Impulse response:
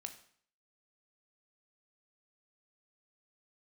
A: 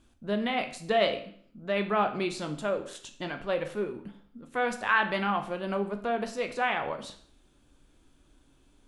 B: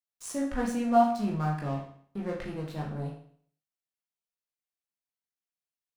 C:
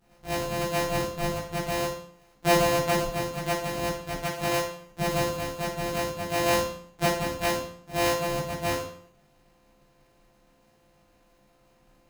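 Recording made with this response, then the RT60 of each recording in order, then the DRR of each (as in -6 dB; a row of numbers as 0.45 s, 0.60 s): A; 0.55 s, 0.55 s, 0.55 s; 6.0 dB, -2.5 dB, -10.5 dB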